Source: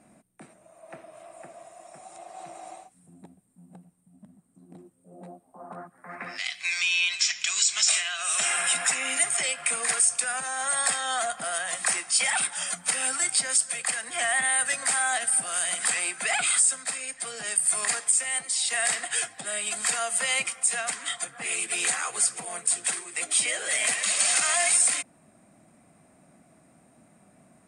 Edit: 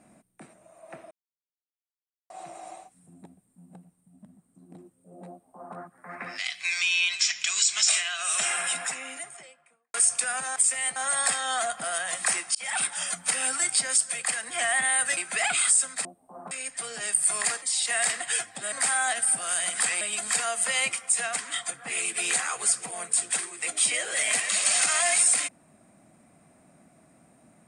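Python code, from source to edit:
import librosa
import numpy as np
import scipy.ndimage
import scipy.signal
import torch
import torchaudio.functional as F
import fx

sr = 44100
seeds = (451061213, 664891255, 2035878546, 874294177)

y = fx.studio_fade_out(x, sr, start_s=8.26, length_s=1.68)
y = fx.edit(y, sr, fx.silence(start_s=1.11, length_s=1.19),
    fx.duplicate(start_s=5.3, length_s=0.46, to_s=16.94),
    fx.fade_in_span(start_s=12.15, length_s=0.28),
    fx.move(start_s=14.77, length_s=1.29, to_s=19.55),
    fx.move(start_s=18.05, length_s=0.4, to_s=10.56), tone=tone)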